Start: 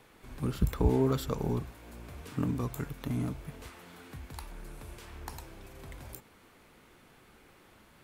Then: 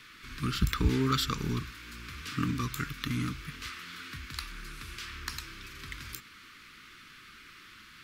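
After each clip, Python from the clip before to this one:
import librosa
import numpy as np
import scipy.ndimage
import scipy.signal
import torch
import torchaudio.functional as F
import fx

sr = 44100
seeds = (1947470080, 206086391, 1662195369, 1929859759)

y = fx.curve_eq(x, sr, hz=(320.0, 740.0, 1200.0, 5000.0, 8800.0), db=(0, -23, 10, 14, 3))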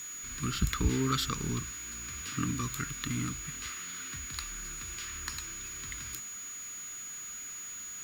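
y = x + 10.0 ** (-38.0 / 20.0) * np.sin(2.0 * np.pi * 6800.0 * np.arange(len(x)) / sr)
y = fx.quant_dither(y, sr, seeds[0], bits=8, dither='none')
y = F.gain(torch.from_numpy(y), -2.0).numpy()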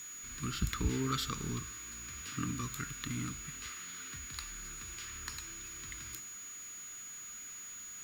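y = fx.comb_fb(x, sr, f0_hz=110.0, decay_s=1.5, harmonics='all', damping=0.0, mix_pct=60)
y = F.gain(torch.from_numpy(y), 3.0).numpy()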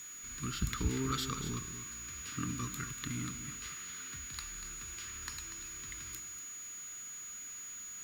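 y = x + 10.0 ** (-10.5 / 20.0) * np.pad(x, (int(240 * sr / 1000.0), 0))[:len(x)]
y = F.gain(torch.from_numpy(y), -1.0).numpy()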